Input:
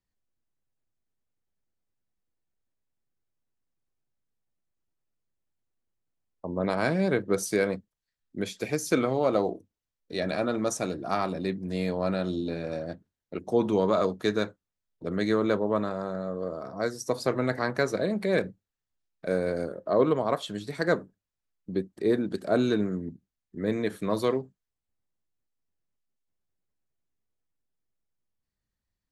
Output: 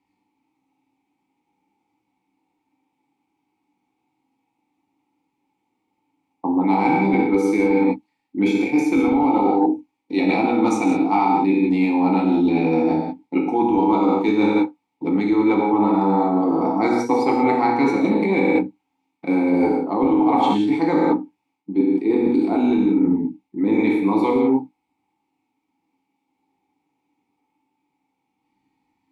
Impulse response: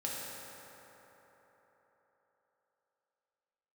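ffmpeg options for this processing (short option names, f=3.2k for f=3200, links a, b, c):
-filter_complex "[0:a]asplit=3[a][b][c];[a]bandpass=f=300:t=q:w=8,volume=0dB[d];[b]bandpass=f=870:t=q:w=8,volume=-6dB[e];[c]bandpass=f=2.24k:t=q:w=8,volume=-9dB[f];[d][e][f]amix=inputs=3:normalize=0,equalizer=f=780:t=o:w=1.5:g=6.5,bandreject=f=1.2k:w=26,asplit=2[g][h];[h]adynamicsmooth=sensitivity=3:basefreq=4.5k,volume=-1dB[i];[g][i]amix=inputs=2:normalize=0[j];[1:a]atrim=start_sample=2205,afade=t=out:st=0.24:d=0.01,atrim=end_sample=11025,asetrate=42777,aresample=44100[k];[j][k]afir=irnorm=-1:irlink=0,apsyclip=20dB,areverse,acompressor=threshold=-18dB:ratio=12,areverse,crystalizer=i=3.5:c=0,volume=3.5dB"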